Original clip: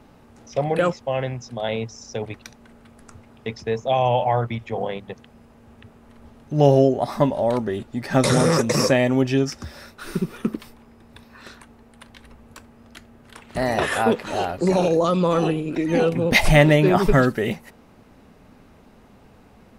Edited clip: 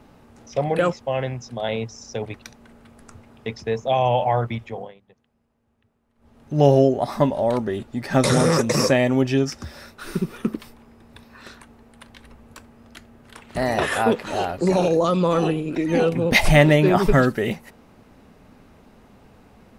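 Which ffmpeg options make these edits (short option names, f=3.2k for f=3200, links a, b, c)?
-filter_complex "[0:a]asplit=3[a][b][c];[a]atrim=end=4.94,asetpts=PTS-STARTPTS,afade=t=out:st=4.57:d=0.37:silence=0.0944061[d];[b]atrim=start=4.94:end=6.16,asetpts=PTS-STARTPTS,volume=-20.5dB[e];[c]atrim=start=6.16,asetpts=PTS-STARTPTS,afade=t=in:d=0.37:silence=0.0944061[f];[d][e][f]concat=n=3:v=0:a=1"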